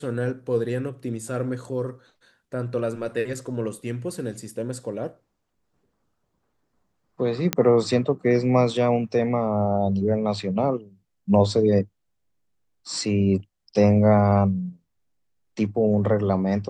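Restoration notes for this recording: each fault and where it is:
0:07.53: click −5 dBFS

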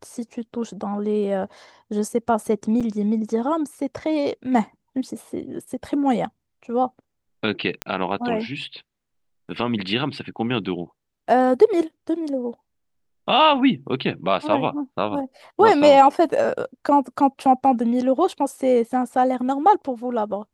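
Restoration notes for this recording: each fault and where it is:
0:02.80–0:02.81: drop-out 6.2 ms
0:07.82: click −8 dBFS

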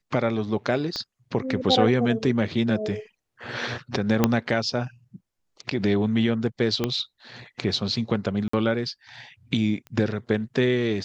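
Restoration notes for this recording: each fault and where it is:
0:00.96: click −16 dBFS
0:04.24: click −4 dBFS
0:06.84: click −10 dBFS
0:08.48–0:08.53: drop-out 54 ms
0:09.87: click −26 dBFS

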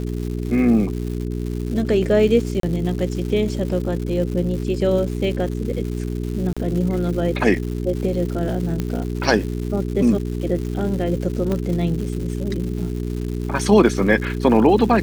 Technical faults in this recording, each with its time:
surface crackle 280 per second −29 dBFS
mains hum 60 Hz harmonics 7 −25 dBFS
0:02.60–0:02.63: drop-out 33 ms
0:06.53–0:06.57: drop-out 36 ms
0:08.80: click −11 dBFS
0:11.52: click −12 dBFS

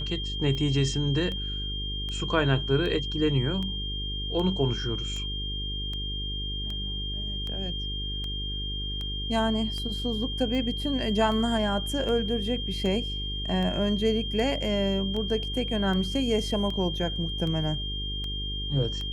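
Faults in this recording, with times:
mains buzz 50 Hz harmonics 9 −34 dBFS
scratch tick 78 rpm −23 dBFS
whistle 3,200 Hz −33 dBFS

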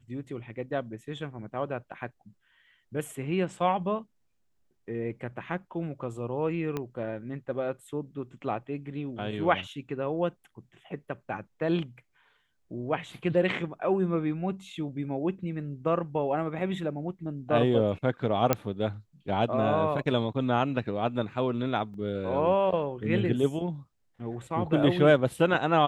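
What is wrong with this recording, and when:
0:06.77: click −18 dBFS
0:18.53: click −8 dBFS
0:21.94: drop-out 2.3 ms

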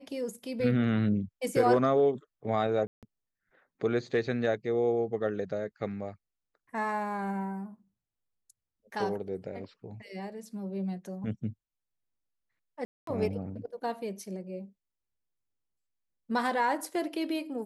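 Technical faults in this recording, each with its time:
0:02.87–0:03.03: drop-out 157 ms
0:12.85–0:13.07: drop-out 223 ms

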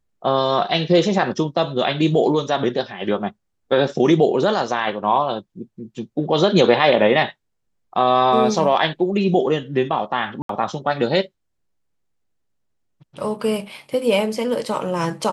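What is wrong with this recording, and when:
0:10.42–0:10.49: drop-out 73 ms

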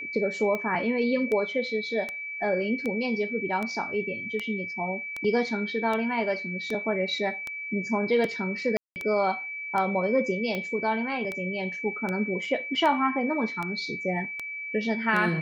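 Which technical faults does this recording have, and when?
scratch tick 78 rpm −18 dBFS
whistle 2,300 Hz −33 dBFS
0:08.77–0:08.96: drop-out 189 ms

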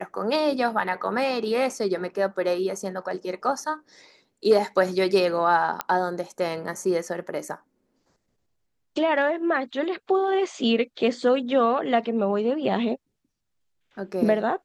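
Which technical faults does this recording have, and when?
0:05.81: click −9 dBFS

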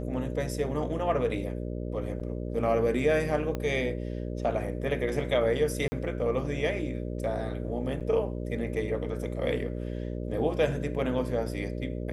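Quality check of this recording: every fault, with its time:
mains buzz 60 Hz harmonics 10 −34 dBFS
0:02.20–0:02.21: drop-out 6.5 ms
0:03.55: click −19 dBFS
0:05.88–0:05.92: drop-out 40 ms
0:08.00–0:08.01: drop-out 7.2 ms

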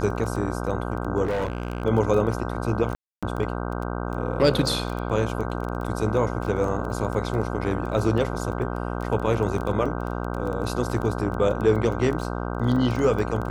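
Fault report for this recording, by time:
mains buzz 60 Hz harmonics 26 −29 dBFS
surface crackle 15 per second −28 dBFS
0:01.24–0:01.83: clipping −22 dBFS
0:02.95–0:03.23: drop-out 276 ms

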